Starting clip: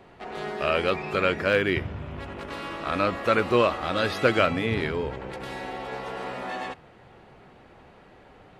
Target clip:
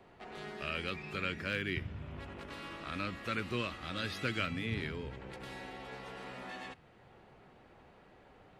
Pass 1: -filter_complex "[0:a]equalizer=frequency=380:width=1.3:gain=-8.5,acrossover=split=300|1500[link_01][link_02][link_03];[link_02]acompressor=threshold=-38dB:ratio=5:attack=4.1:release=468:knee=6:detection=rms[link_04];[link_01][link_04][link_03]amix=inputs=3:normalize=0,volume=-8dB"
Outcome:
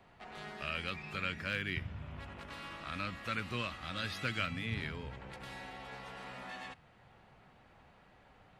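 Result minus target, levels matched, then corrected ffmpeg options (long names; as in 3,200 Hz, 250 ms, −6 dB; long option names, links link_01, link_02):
500 Hz band −3.5 dB
-filter_complex "[0:a]acrossover=split=300|1500[link_01][link_02][link_03];[link_02]acompressor=threshold=-38dB:ratio=5:attack=4.1:release=468:knee=6:detection=rms[link_04];[link_01][link_04][link_03]amix=inputs=3:normalize=0,volume=-8dB"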